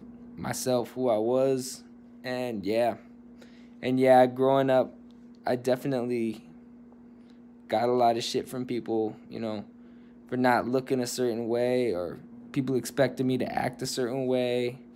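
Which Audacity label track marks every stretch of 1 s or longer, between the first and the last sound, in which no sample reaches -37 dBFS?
6.370000	7.700000	silence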